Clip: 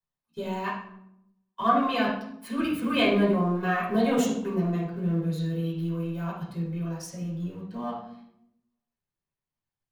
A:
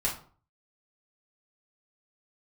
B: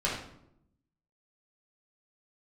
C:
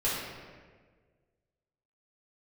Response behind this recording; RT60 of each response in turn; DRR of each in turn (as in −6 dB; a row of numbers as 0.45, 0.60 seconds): B; 0.45, 0.75, 1.6 seconds; −5.0, −6.5, −9.5 decibels